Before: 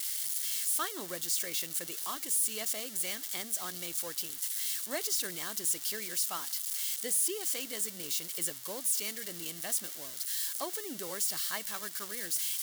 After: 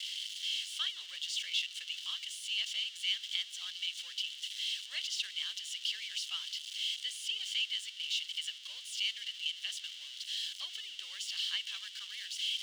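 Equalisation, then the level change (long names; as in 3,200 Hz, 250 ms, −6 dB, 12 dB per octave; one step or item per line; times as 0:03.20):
high-pass with resonance 3,000 Hz, resonance Q 6.4
high-frequency loss of the air 140 metres
0.0 dB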